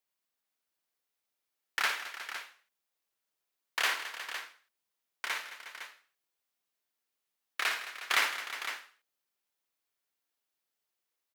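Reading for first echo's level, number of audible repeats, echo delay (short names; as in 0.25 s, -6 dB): -7.5 dB, 5, 56 ms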